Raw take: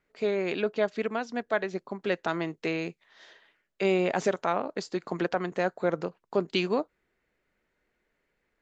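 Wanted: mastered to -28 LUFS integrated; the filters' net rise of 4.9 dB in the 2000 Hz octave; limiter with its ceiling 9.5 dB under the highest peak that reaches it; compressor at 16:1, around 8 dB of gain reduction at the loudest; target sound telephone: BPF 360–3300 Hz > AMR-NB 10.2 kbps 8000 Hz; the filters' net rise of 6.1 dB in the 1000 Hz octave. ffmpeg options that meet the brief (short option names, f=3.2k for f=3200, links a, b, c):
-af "equalizer=f=1k:t=o:g=7.5,equalizer=f=2k:t=o:g=4.5,acompressor=threshold=-25dB:ratio=16,alimiter=limit=-22dB:level=0:latency=1,highpass=360,lowpass=3.3k,volume=9.5dB" -ar 8000 -c:a libopencore_amrnb -b:a 10200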